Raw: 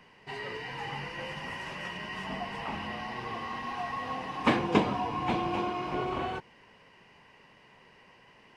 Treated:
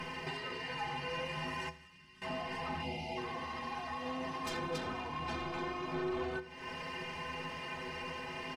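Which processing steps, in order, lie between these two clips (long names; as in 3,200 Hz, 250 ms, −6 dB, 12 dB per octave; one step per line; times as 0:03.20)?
0:02.83–0:03.18: time-frequency box erased 950–2,000 Hz
in parallel at −7 dB: sine wavefolder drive 19 dB, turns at −9 dBFS
on the sum: downward compressor 12 to 1, threshold −36 dBFS, peak gain reduction 22 dB
0:01.69–0:02.22: guitar amp tone stack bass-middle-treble 6-0-2
stiff-string resonator 76 Hz, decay 0.3 s, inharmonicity 0.03
on a send: repeating echo 80 ms, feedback 45%, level −18 dB
on the sum: level +7.5 dB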